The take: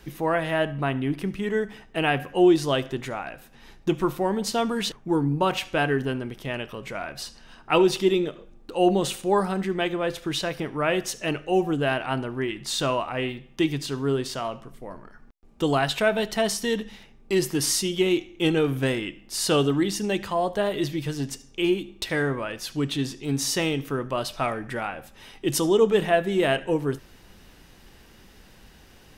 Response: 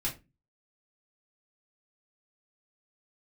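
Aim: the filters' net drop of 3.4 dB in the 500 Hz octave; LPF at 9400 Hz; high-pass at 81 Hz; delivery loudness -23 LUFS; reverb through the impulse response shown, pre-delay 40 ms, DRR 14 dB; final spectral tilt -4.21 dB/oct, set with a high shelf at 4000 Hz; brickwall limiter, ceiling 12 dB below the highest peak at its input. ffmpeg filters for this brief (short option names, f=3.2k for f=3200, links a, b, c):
-filter_complex "[0:a]highpass=81,lowpass=9.4k,equalizer=f=500:t=o:g=-5,highshelf=f=4k:g=4,alimiter=limit=-20dB:level=0:latency=1,asplit=2[a][b];[1:a]atrim=start_sample=2205,adelay=40[c];[b][c]afir=irnorm=-1:irlink=0,volume=-18dB[d];[a][d]amix=inputs=2:normalize=0,volume=7dB"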